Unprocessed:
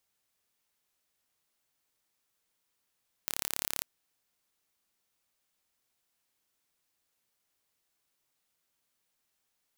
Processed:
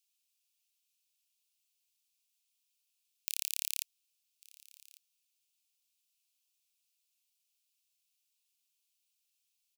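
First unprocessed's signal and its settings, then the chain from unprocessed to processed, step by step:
pulse train 35.2/s, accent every 0, -5 dBFS 0.56 s
elliptic high-pass 2500 Hz, stop band 40 dB; echo 1.149 s -22.5 dB

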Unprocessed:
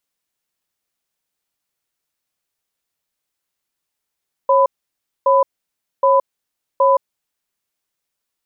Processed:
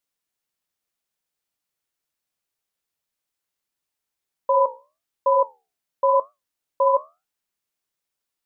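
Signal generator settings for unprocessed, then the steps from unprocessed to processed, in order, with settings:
cadence 546 Hz, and 1000 Hz, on 0.17 s, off 0.60 s, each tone -12.5 dBFS 2.89 s
flange 0.95 Hz, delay 8.9 ms, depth 7.7 ms, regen -72%

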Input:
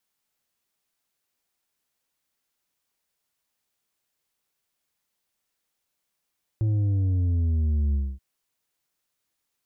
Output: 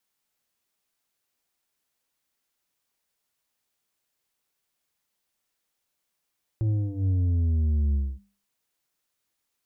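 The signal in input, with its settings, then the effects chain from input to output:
sub drop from 110 Hz, over 1.58 s, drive 6 dB, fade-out 0.25 s, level -21 dB
notches 50/100/150/200 Hz

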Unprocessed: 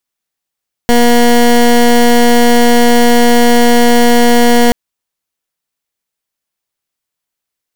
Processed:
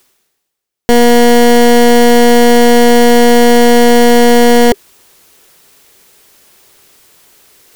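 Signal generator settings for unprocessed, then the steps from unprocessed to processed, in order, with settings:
pulse 239 Hz, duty 19% -6.5 dBFS 3.83 s
bell 400 Hz +8 dB 0.52 oct; reverse; upward compressor, threshold -19 dBFS; reverse

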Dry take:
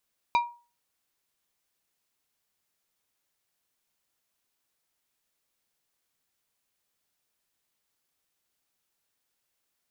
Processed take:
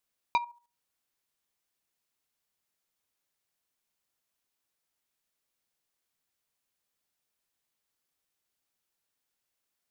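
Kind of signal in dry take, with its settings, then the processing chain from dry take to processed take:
glass hit plate, lowest mode 953 Hz, decay 0.35 s, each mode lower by 7.5 dB, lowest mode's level -17 dB
level quantiser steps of 12 dB

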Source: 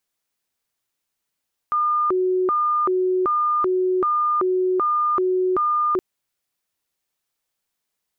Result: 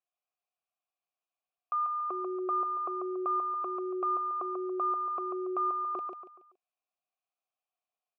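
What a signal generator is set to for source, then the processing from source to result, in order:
siren hi-lo 369–1210 Hz 1.3/s sine -17 dBFS 4.27 s
vowel filter a; on a send: feedback echo 0.141 s, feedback 36%, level -5 dB

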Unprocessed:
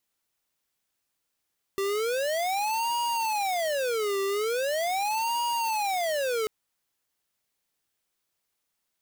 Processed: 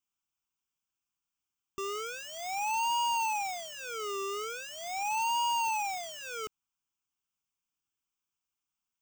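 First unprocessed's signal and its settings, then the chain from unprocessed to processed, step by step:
siren wail 392–950 Hz 0.41/s square -27.5 dBFS 4.69 s
fixed phaser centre 2800 Hz, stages 8; upward expander 1.5:1, over -44 dBFS

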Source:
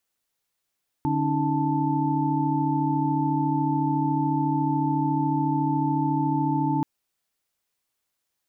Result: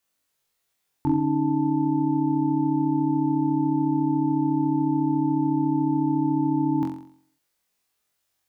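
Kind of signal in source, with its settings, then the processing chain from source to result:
chord D3/C#4/D#4/A5 sine, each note -26.5 dBFS 5.78 s
on a send: flutter echo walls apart 3.8 m, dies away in 0.57 s

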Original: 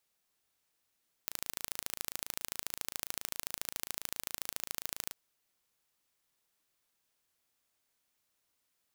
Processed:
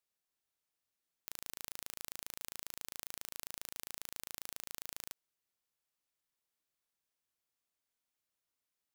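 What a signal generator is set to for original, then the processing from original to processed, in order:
pulse train 27.4/s, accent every 2, -7.5 dBFS 3.85 s
sample leveller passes 5; limiter -16 dBFS

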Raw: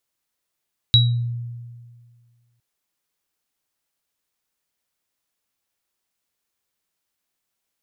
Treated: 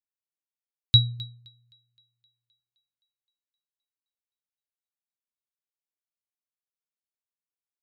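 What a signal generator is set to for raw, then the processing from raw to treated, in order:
sine partials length 1.66 s, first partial 119 Hz, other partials 3880 Hz, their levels 4 dB, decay 1.86 s, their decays 0.31 s, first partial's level -12 dB
on a send: thinning echo 0.26 s, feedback 64%, high-pass 200 Hz, level -9 dB; on the sum: upward expander 2.5:1, over -29 dBFS

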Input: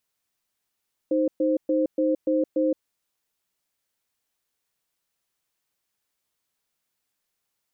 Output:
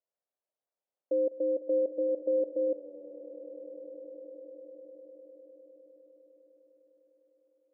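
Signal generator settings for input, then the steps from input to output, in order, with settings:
cadence 311 Hz, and 523 Hz, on 0.17 s, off 0.12 s, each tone -22 dBFS 1.67 s
band-pass 580 Hz, Q 3.4; swelling echo 0.101 s, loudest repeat 8, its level -14 dB

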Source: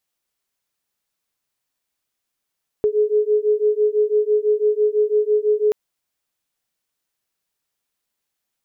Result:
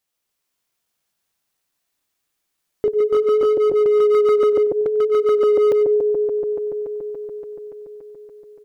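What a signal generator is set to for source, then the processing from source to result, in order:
beating tones 420 Hz, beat 6 Hz, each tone -18 dBFS 2.88 s
regenerating reverse delay 0.143 s, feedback 84%, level -3 dB; overloaded stage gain 13 dB; echo 95 ms -19 dB

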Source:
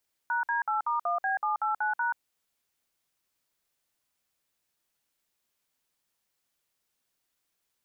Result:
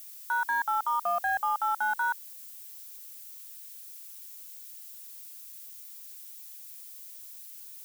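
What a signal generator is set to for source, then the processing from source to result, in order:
DTMF "#D8*1B789#", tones 0.132 s, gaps 56 ms, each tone -28 dBFS
in parallel at -9 dB: hard clip -36 dBFS; on the sum: added noise violet -46 dBFS

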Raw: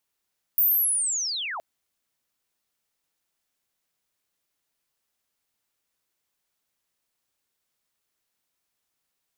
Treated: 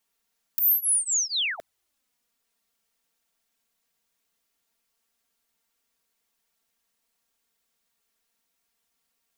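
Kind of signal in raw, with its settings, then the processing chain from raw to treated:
chirp linear 15000 Hz -> 580 Hz -16.5 dBFS -> -30 dBFS 1.02 s
in parallel at -0.5 dB: limiter -27 dBFS; on the sum: envelope flanger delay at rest 4.4 ms, full sweep at -22.5 dBFS

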